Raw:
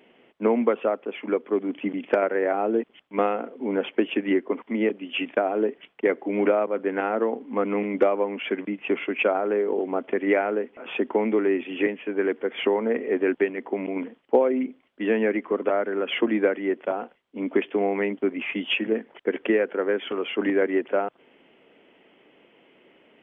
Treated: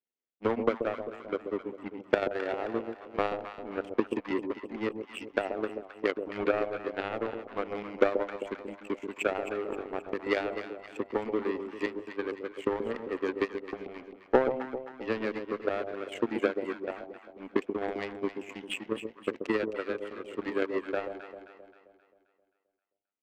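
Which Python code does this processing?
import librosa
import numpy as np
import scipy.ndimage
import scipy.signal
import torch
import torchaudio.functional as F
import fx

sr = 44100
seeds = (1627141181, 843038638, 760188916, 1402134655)

y = fx.power_curve(x, sr, exponent=2.0)
y = fx.echo_alternate(y, sr, ms=132, hz=800.0, feedback_pct=67, wet_db=-6.5)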